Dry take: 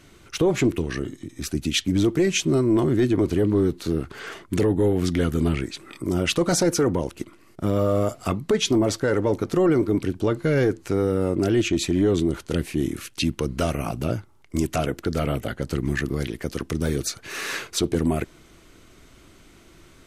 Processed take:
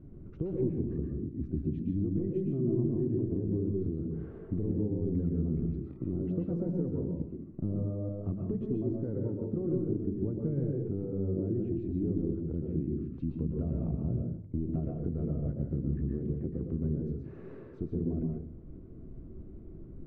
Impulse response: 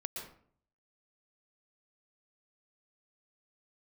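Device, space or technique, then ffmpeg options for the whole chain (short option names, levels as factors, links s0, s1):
television next door: -filter_complex "[0:a]acompressor=threshold=0.0141:ratio=3,lowpass=260[s0];[1:a]atrim=start_sample=2205[s1];[s0][s1]afir=irnorm=-1:irlink=0,volume=2.51"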